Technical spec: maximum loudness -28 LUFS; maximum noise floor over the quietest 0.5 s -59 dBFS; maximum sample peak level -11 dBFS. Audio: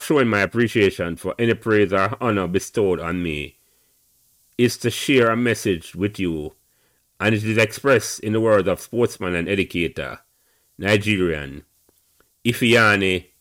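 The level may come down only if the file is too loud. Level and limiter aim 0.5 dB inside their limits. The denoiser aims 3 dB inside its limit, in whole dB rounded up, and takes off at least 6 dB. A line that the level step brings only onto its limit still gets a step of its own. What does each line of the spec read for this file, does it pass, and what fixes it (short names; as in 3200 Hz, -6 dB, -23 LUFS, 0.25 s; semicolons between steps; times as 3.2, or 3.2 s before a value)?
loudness -20.0 LUFS: fail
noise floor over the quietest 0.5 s -64 dBFS: OK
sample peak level -6.0 dBFS: fail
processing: gain -8.5 dB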